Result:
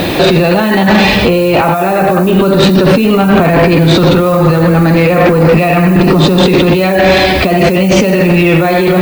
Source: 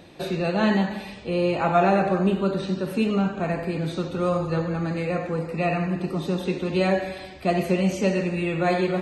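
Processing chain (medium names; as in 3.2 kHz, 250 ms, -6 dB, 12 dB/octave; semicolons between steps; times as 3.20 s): Chebyshev low-pass 4.2 kHz, order 2; hum notches 50/100/150/200 Hz; compressor with a negative ratio -33 dBFS, ratio -1; added noise violet -58 dBFS; saturation -27 dBFS, distortion -13 dB; loudness maximiser +30.5 dB; trim -1 dB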